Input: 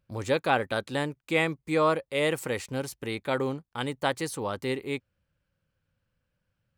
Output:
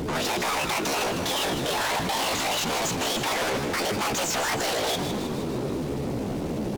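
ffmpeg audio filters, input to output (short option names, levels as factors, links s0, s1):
-filter_complex "[0:a]asplit=2[s0][s1];[s1]alimiter=limit=0.141:level=0:latency=1:release=70,volume=0.794[s2];[s0][s2]amix=inputs=2:normalize=0,aeval=exprs='val(0)+0.0126*(sin(2*PI*50*n/s)+sin(2*PI*2*50*n/s)/2+sin(2*PI*3*50*n/s)/3+sin(2*PI*4*50*n/s)/4+sin(2*PI*5*50*n/s)/5)':c=same,aresample=11025,asoftclip=type=tanh:threshold=0.0891,aresample=44100,afftfilt=real='hypot(re,im)*cos(2*PI*random(0))':imag='hypot(re,im)*sin(2*PI*random(1))':win_size=512:overlap=0.75,acrusher=bits=11:mix=0:aa=0.000001,asplit=2[s3][s4];[s4]highpass=f=720:p=1,volume=44.7,asoftclip=type=tanh:threshold=0.119[s5];[s3][s5]amix=inputs=2:normalize=0,lowpass=f=2900:p=1,volume=0.501,asoftclip=type=hard:threshold=0.02,asetrate=66075,aresample=44100,atempo=0.66742,asplit=9[s6][s7][s8][s9][s10][s11][s12][s13][s14];[s7]adelay=156,afreqshift=97,volume=0.398[s15];[s8]adelay=312,afreqshift=194,volume=0.245[s16];[s9]adelay=468,afreqshift=291,volume=0.153[s17];[s10]adelay=624,afreqshift=388,volume=0.0944[s18];[s11]adelay=780,afreqshift=485,volume=0.0589[s19];[s12]adelay=936,afreqshift=582,volume=0.0363[s20];[s13]adelay=1092,afreqshift=679,volume=0.0226[s21];[s14]adelay=1248,afreqshift=776,volume=0.014[s22];[s6][s15][s16][s17][s18][s19][s20][s21][s22]amix=inputs=9:normalize=0,volume=2.51"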